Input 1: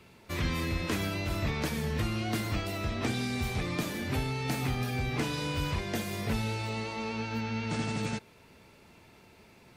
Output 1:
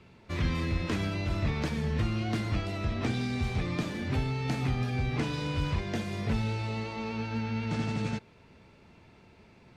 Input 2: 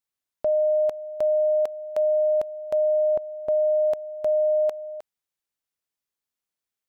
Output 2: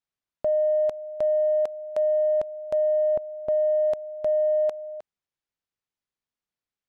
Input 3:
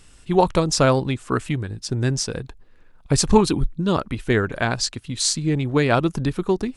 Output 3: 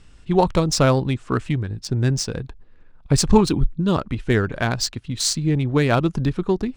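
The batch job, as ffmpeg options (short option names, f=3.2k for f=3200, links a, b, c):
-af "adynamicsmooth=sensitivity=2.5:basefreq=4.7k,bass=f=250:g=4,treble=f=4k:g=3,volume=-1dB"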